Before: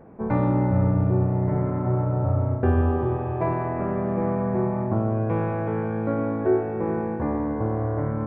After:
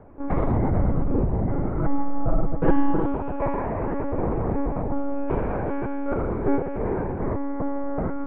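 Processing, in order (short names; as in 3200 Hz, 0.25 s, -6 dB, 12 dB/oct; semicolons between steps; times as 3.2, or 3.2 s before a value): monotone LPC vocoder at 8 kHz 280 Hz; 1.77–3.06 comb 6.1 ms, depth 93%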